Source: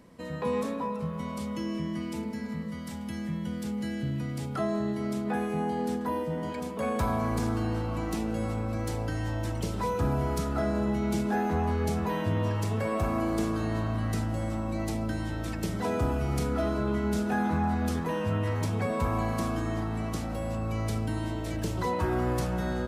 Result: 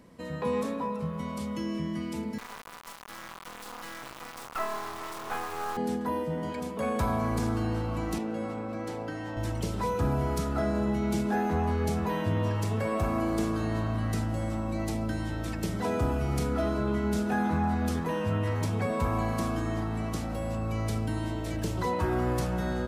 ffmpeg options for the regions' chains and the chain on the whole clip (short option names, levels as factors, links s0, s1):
-filter_complex "[0:a]asettb=1/sr,asplit=3[s0][s1][s2];[s0]atrim=end=2.384[s3];[s1]atrim=start=2.38:end=5.77,asetpts=PTS-STARTPTS,afade=t=in:d=0.004:c=qsin,afade=t=out:st=3.386:d=0.004:c=qsin,highpass=490,acrusher=bits=4:dc=4:mix=0:aa=0.000001,equalizer=f=1100:t=o:w=0.94:g=10.5[s4];[s2]atrim=start=5.766[s5];[s3][s4]acrossfade=d=0.004:c1=hsin:c2=qsin[s6];[s6][s5]acrossfade=d=0.004:c1=qsin:c2=hsin,asettb=1/sr,asplit=3[s7][s8][s9];[s7]atrim=end=8.184[s10];[s8]atrim=start=8.18:end=9.37,asetpts=PTS-STARTPTS,afade=t=in:d=0.004:c=qsin,afade=t=out:st=1.186:d=0.004:c=qsin,highpass=200,highshelf=f=4900:g=-12[s11];[s9]atrim=start=9.366[s12];[s10][s11]acrossfade=d=0.004:c1=hsin:c2=qsin[s13];[s13][s12]acrossfade=d=0.004:c1=qsin:c2=hsin"